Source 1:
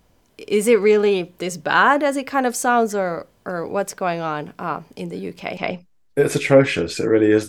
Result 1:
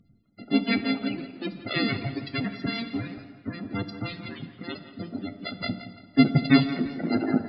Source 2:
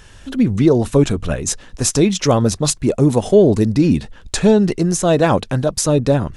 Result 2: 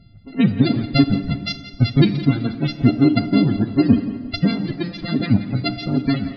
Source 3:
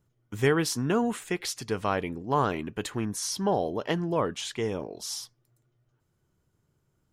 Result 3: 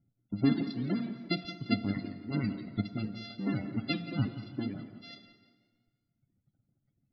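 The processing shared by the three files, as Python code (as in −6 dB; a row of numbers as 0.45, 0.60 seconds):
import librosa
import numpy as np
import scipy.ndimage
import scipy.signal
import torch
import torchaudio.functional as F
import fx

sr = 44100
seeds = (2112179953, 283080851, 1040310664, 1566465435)

y = np.r_[np.sort(x[:len(x) // 64 * 64].reshape(-1, 64), axis=1).ravel(), x[len(x) // 64 * 64:]]
y = fx.dereverb_blind(y, sr, rt60_s=1.6)
y = fx.high_shelf_res(y, sr, hz=5900.0, db=-7.0, q=3.0)
y = fx.hpss(y, sr, part='harmonic', gain_db=-14)
y = fx.comb_fb(y, sr, f0_hz=100.0, decay_s=0.17, harmonics='all', damping=0.0, mix_pct=50)
y = fx.spec_topn(y, sr, count=32)
y = fx.graphic_eq(y, sr, hz=(125, 250, 500, 1000, 2000, 4000), db=(11, 12, -7, -10, 7, 11))
y = fx.echo_tape(y, sr, ms=172, feedback_pct=47, wet_db=-12.5, lp_hz=3700.0, drive_db=2.0, wow_cents=27)
y = fx.rev_plate(y, sr, seeds[0], rt60_s=1.7, hf_ratio=0.75, predelay_ms=0, drr_db=10.5)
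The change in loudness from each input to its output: −7.5, −3.5, −5.0 LU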